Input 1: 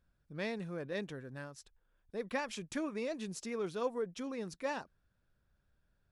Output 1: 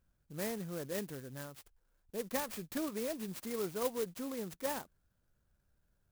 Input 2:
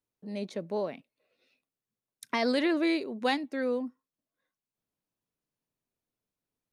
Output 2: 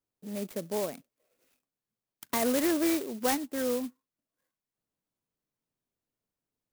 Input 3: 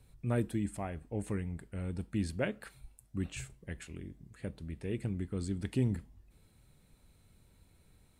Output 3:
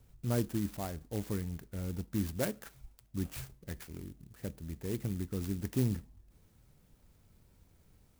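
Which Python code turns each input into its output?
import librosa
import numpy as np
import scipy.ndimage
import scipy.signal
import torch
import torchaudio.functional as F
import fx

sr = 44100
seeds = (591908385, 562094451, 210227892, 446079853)

y = fx.clock_jitter(x, sr, seeds[0], jitter_ms=0.091)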